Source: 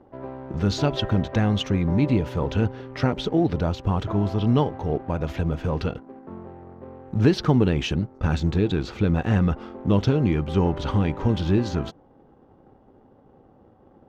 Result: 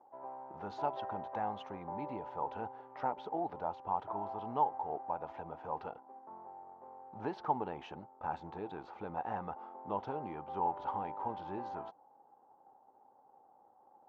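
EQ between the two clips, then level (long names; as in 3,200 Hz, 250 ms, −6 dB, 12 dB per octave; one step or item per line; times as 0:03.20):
resonant band-pass 850 Hz, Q 6
+1.5 dB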